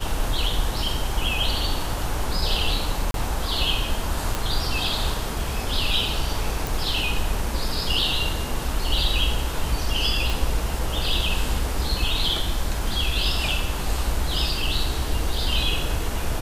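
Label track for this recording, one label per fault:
3.110000	3.140000	gap 32 ms
4.350000	4.350000	pop
6.670000	6.670000	pop
10.300000	10.300000	pop

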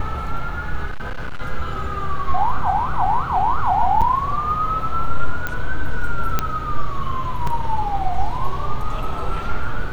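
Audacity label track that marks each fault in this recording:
0.850000	1.410000	clipped -21.5 dBFS
4.010000	4.020000	gap 7.3 ms
5.470000	5.470000	pop -10 dBFS
6.390000	6.390000	pop -4 dBFS
7.470000	7.470000	gap 3.5 ms

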